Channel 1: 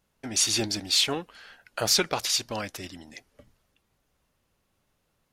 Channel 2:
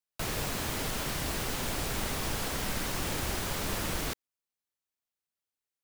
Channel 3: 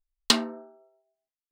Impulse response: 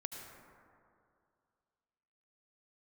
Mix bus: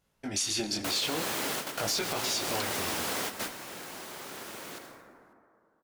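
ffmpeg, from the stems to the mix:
-filter_complex "[0:a]flanger=delay=18.5:depth=6.7:speed=0.47,volume=-1dB,asplit=3[a][b][c];[b]volume=-3.5dB[d];[1:a]highpass=270,adelay=650,volume=0dB,asplit=2[e][f];[f]volume=-6dB[g];[2:a]adelay=2300,volume=-15.5dB[h];[c]apad=whole_len=285950[i];[e][i]sidechaingate=range=-33dB:threshold=-57dB:ratio=16:detection=peak[j];[3:a]atrim=start_sample=2205[k];[d][g]amix=inputs=2:normalize=0[l];[l][k]afir=irnorm=-1:irlink=0[m];[a][j][h][m]amix=inputs=4:normalize=0,alimiter=limit=-20dB:level=0:latency=1:release=119"

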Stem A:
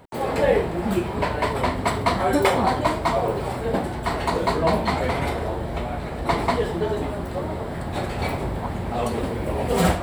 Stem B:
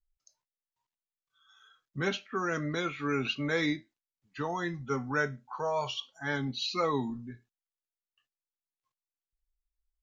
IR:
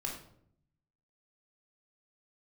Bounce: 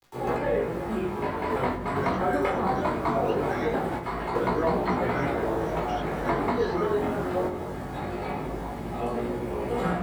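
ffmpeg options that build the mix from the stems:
-filter_complex "[0:a]acrusher=bits=6:mix=0:aa=0.000001,volume=2dB,asplit=2[a][b];[b]volume=-5.5dB[c];[1:a]lowpass=f=5.8k:t=q:w=4.4,volume=-1dB,asplit=2[d][e];[e]apad=whole_len=442193[f];[a][f]sidechaingate=range=-33dB:threshold=-60dB:ratio=16:detection=peak[g];[2:a]atrim=start_sample=2205[h];[c][h]afir=irnorm=-1:irlink=0[i];[g][d][i]amix=inputs=3:normalize=0,adynamicequalizer=threshold=0.0224:dfrequency=1400:dqfactor=2.2:tfrequency=1400:tqfactor=2.2:attack=5:release=100:ratio=0.375:range=2.5:mode=boostabove:tftype=bell,acrossover=split=140|500|2700[j][k][l][m];[j]acompressor=threshold=-40dB:ratio=4[n];[k]acompressor=threshold=-23dB:ratio=4[o];[l]acompressor=threshold=-26dB:ratio=4[p];[m]acompressor=threshold=-52dB:ratio=4[q];[n][o][p][q]amix=inputs=4:normalize=0,flanger=delay=16.5:depth=5.6:speed=0.21"

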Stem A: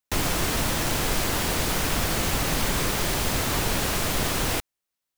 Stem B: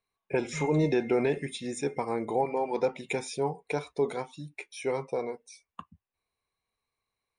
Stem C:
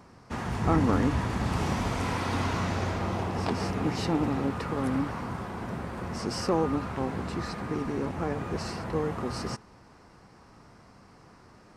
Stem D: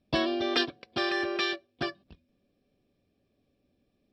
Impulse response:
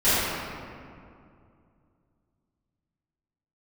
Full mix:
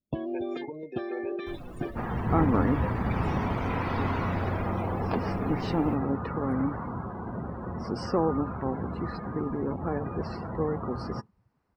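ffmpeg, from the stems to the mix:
-filter_complex "[0:a]asoftclip=type=tanh:threshold=-20dB,adelay=1350,volume=-12dB[a];[1:a]highpass=220,lowshelf=f=470:g=-8,volume=-8.5dB[b];[2:a]adelay=1650,volume=0.5dB[c];[3:a]acompressor=threshold=-32dB:ratio=16,tiltshelf=f=760:g=7,volume=0dB[d];[a][b][c][d]amix=inputs=4:normalize=0,afftdn=nr=23:nf=-38,equalizer=f=6.4k:w=1.1:g=-8"

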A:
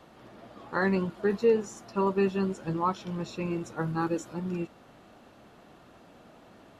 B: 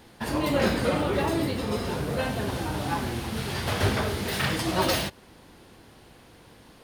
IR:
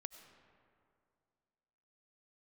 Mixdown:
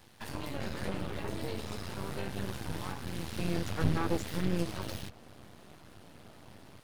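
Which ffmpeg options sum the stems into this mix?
-filter_complex "[0:a]alimiter=limit=-20.5dB:level=0:latency=1,afade=t=in:st=3.14:d=0.47:silence=0.281838[a];[1:a]tiltshelf=f=640:g=-7,acrossover=split=440[b][c];[c]acompressor=threshold=-31dB:ratio=10[d];[b][d]amix=inputs=2:normalize=0,volume=-8dB[e];[a][e]amix=inputs=2:normalize=0,highpass=56,equalizer=f=91:w=0.76:g=13.5,aeval=exprs='max(val(0),0)':c=same"

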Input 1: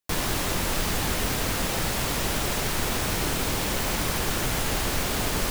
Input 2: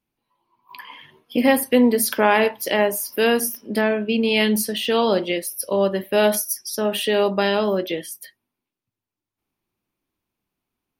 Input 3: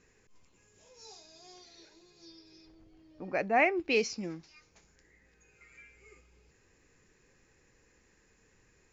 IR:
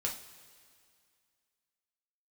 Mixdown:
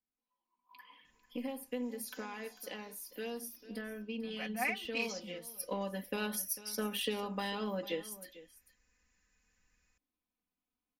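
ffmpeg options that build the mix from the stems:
-filter_complex "[1:a]acompressor=threshold=-20dB:ratio=6,volume=-12.5dB,afade=t=in:st=5.45:d=0.25:silence=0.421697,asplit=2[a][b];[b]volume=-16dB[c];[2:a]equalizer=f=410:w=0.8:g=-14.5,adelay=1050,volume=-7.5dB[d];[c]aecho=0:1:447:1[e];[a][d][e]amix=inputs=3:normalize=0,aecho=1:1:4:0.86,aeval=exprs='0.0891*(cos(1*acos(clip(val(0)/0.0891,-1,1)))-cos(1*PI/2))+0.00178*(cos(7*acos(clip(val(0)/0.0891,-1,1)))-cos(7*PI/2))':c=same"

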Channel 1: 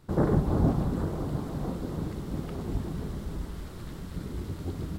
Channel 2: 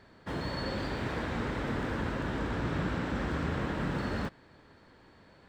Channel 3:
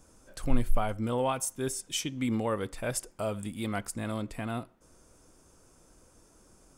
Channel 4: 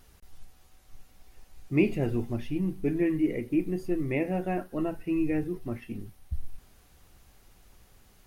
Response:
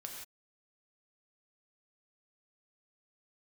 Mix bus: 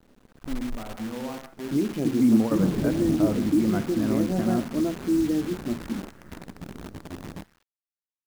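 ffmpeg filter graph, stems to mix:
-filter_complex "[0:a]adelay=2450,volume=-12.5dB,asplit=2[a][b];[b]volume=-13.5dB[c];[1:a]highpass=1.4k,acompressor=threshold=-54dB:ratio=4,adelay=2150,volume=-2dB,asplit=2[d][e];[e]volume=-3dB[f];[2:a]volume=-3dB,asplit=2[g][h];[h]volume=-5.5dB[i];[3:a]acrusher=bits=6:mix=0:aa=0.000001,alimiter=limit=-20.5dB:level=0:latency=1:release=285,highpass=160,volume=-3.5dB,asplit=3[j][k][l];[k]volume=-22dB[m];[l]apad=whole_len=298709[n];[g][n]sidechaingate=range=-30dB:threshold=-44dB:ratio=16:detection=peak[o];[4:a]atrim=start_sample=2205[p];[c][f][i][m]amix=inputs=4:normalize=0[q];[q][p]afir=irnorm=-1:irlink=0[r];[a][d][o][j][r]amix=inputs=5:normalize=0,lowpass=f=1.8k:w=0.5412,lowpass=f=1.8k:w=1.3066,equalizer=f=240:w=0.92:g=12.5,acrusher=bits=7:dc=4:mix=0:aa=0.000001"

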